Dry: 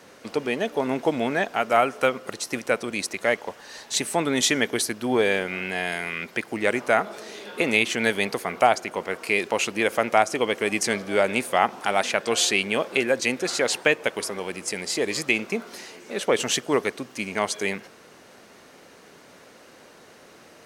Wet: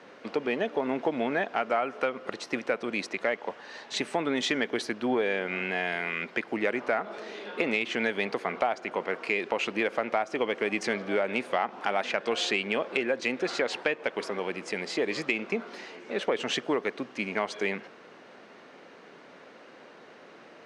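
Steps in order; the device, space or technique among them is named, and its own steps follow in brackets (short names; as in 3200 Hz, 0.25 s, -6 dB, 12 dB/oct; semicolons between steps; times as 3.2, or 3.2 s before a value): AM radio (BPF 180–3200 Hz; compressor 5:1, threshold -23 dBFS, peak gain reduction 10 dB; soft clip -11 dBFS, distortion -27 dB)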